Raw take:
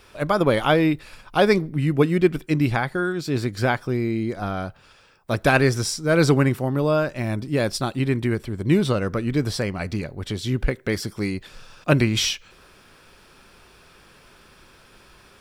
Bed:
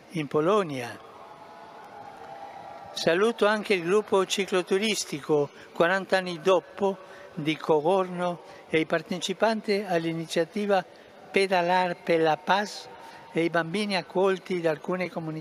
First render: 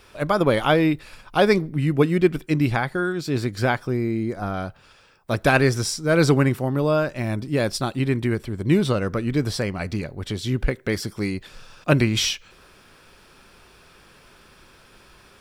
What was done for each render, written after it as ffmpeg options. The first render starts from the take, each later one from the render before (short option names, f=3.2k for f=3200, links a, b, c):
-filter_complex "[0:a]asettb=1/sr,asplit=3[a][b][c];[a]atrim=end=3.894[d];[b]atrim=start=3.89:end=4.54,asetpts=PTS-STARTPTS,afade=t=in:d=0.004:c=qsin,afade=t=out:st=0.646:d=0.004:c=qsin,equalizer=f=3.3k:w=1.5:g=-7[e];[c]atrim=start=4.536[f];[d][e]acrossfade=d=0.004:c1=hsin:c2=qsin[g];[g][f]acrossfade=d=0.004:c1=qsin:c2=hsin"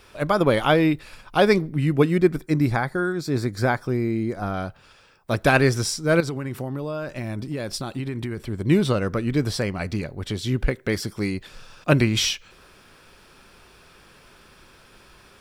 -filter_complex "[0:a]asettb=1/sr,asplit=3[a][b][c];[a]atrim=end=2.184[d];[b]atrim=start=2.18:end=3.84,asetpts=PTS-STARTPTS,afade=t=in:d=0.004:c=qsin,afade=t=out:st=1.656:d=0.004:c=qsin,equalizer=f=2.9k:w=3.6:g=-14[e];[c]atrim=start=3.836[f];[d][e]acrossfade=d=0.004:c1=hsin:c2=qsin[g];[g][f]acrossfade=d=0.004:c1=qsin:c2=hsin,asettb=1/sr,asplit=3[h][i][j];[h]atrim=end=6.204[k];[i]atrim=start=6.2:end=8.38,asetpts=PTS-STARTPTS,afade=t=in:d=0.004:c=qsin,afade=t=out:st=2.176:d=0.004:c=qsin,acompressor=threshold=-24dB:ratio=12:attack=3.2:release=140:knee=1:detection=peak[l];[j]atrim=start=8.376[m];[k][l]acrossfade=d=0.004:c1=hsin:c2=qsin[n];[n][m]acrossfade=d=0.004:c1=qsin:c2=hsin"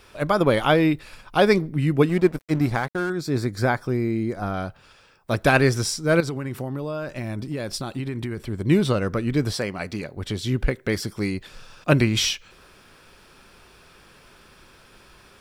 -filter_complex "[0:a]asettb=1/sr,asplit=3[a][b][c];[a]atrim=end=2.094[d];[b]atrim=start=2.09:end=3.1,asetpts=PTS-STARTPTS,afade=t=in:d=0.004:c=qsin,afade=t=out:st=1.006:d=0.004:c=qsin,aeval=exprs='sgn(val(0))*max(abs(val(0))-0.0168,0)':c=same[e];[c]atrim=start=3.096[f];[d][e]acrossfade=d=0.004:c1=hsin:c2=qsin[g];[g][f]acrossfade=d=0.004:c1=qsin:c2=hsin,asettb=1/sr,asplit=3[h][i][j];[h]atrim=end=9.534[k];[i]atrim=start=9.53:end=10.17,asetpts=PTS-STARTPTS,afade=t=in:d=0.004:c=qsin,afade=t=out:st=0.636:d=0.004:c=qsin,highpass=f=220:p=1[l];[j]atrim=start=10.166[m];[k][l]acrossfade=d=0.004:c1=hsin:c2=qsin[n];[n][m]acrossfade=d=0.004:c1=qsin:c2=hsin"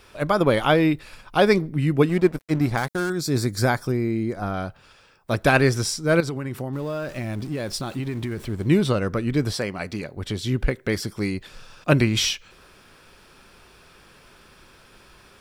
-filter_complex "[0:a]asettb=1/sr,asplit=3[a][b][c];[a]atrim=end=2.774[d];[b]atrim=start=2.77:end=3.92,asetpts=PTS-STARTPTS,afade=t=in:d=0.004:c=qsin,afade=t=out:st=1.146:d=0.004:c=qsin,bass=f=250:g=2,treble=f=4k:g=10[e];[c]atrim=start=3.916[f];[d][e]acrossfade=d=0.004:c1=hsin:c2=qsin[g];[g][f]acrossfade=d=0.004:c1=qsin:c2=hsin,asettb=1/sr,asplit=3[h][i][j];[h]atrim=end=6.734[k];[i]atrim=start=6.73:end=8.69,asetpts=PTS-STARTPTS,afade=t=in:d=0.004:c=qsin,afade=t=out:st=1.956:d=0.004:c=qsin,aeval=exprs='val(0)+0.5*0.00944*sgn(val(0))':c=same[l];[j]atrim=start=8.686[m];[k][l]acrossfade=d=0.004:c1=hsin:c2=qsin[n];[n][m]acrossfade=d=0.004:c1=qsin:c2=hsin"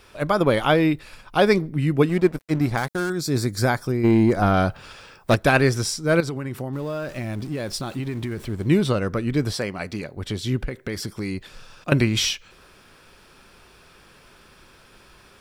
-filter_complex "[0:a]asplit=3[a][b][c];[a]afade=t=out:st=4.03:d=0.02[d];[b]aeval=exprs='0.299*sin(PI/2*2*val(0)/0.299)':c=same,afade=t=in:st=4.03:d=0.02,afade=t=out:st=5.34:d=0.02[e];[c]afade=t=in:st=5.34:d=0.02[f];[d][e][f]amix=inputs=3:normalize=0,asettb=1/sr,asplit=3[g][h][i];[g]atrim=end=10.634[j];[h]atrim=start=10.63:end=11.92,asetpts=PTS-STARTPTS,afade=t=in:d=0.004:c=qsin,afade=t=out:st=1.286:d=0.004:c=qsin,acompressor=threshold=-23dB:ratio=6:attack=3.2:release=140:knee=1:detection=peak[k];[i]atrim=start=11.916[l];[j][k]acrossfade=d=0.004:c1=hsin:c2=qsin[m];[m][l]acrossfade=d=0.004:c1=qsin:c2=hsin"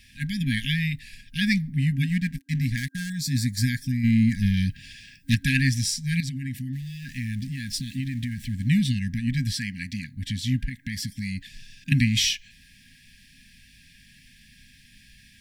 -af "afftfilt=real='re*(1-between(b*sr/4096,270,1600))':imag='im*(1-between(b*sr/4096,270,1600))':win_size=4096:overlap=0.75"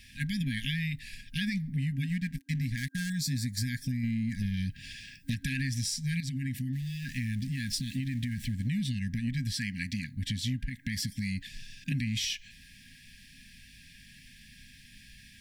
-af "alimiter=limit=-15.5dB:level=0:latency=1:release=48,acompressor=threshold=-29dB:ratio=5"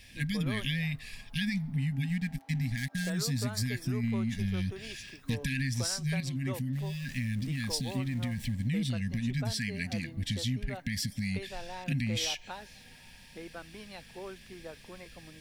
-filter_complex "[1:a]volume=-20dB[a];[0:a][a]amix=inputs=2:normalize=0"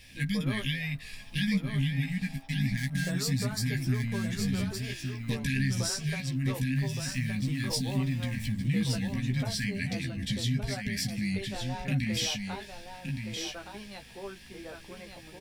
-filter_complex "[0:a]asplit=2[a][b];[b]adelay=15,volume=-5dB[c];[a][c]amix=inputs=2:normalize=0,aecho=1:1:1168:0.501"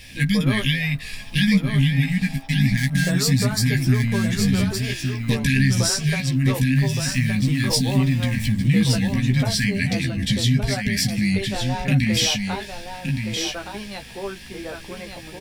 -af "volume=10.5dB"